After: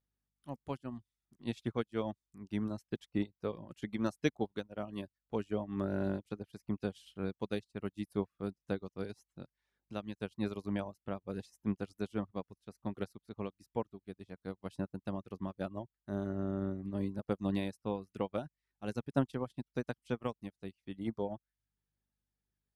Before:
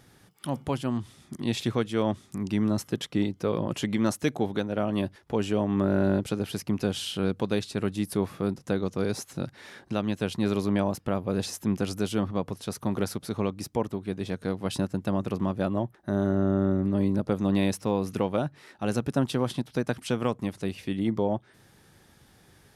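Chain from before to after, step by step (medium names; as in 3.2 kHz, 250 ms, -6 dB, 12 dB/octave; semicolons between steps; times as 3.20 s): hum 50 Hz, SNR 23 dB; reverb removal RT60 0.56 s; upward expansion 2.5:1, over -44 dBFS; trim -3.5 dB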